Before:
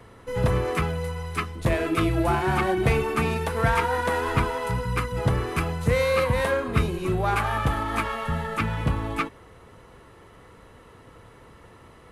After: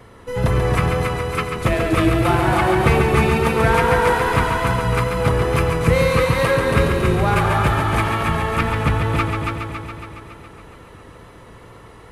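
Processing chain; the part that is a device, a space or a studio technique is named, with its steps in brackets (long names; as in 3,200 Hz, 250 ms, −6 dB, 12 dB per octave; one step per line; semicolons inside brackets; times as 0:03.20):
multi-head tape echo (echo machine with several playback heads 139 ms, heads first and second, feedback 63%, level −6 dB; tape wow and flutter 24 cents)
level +4 dB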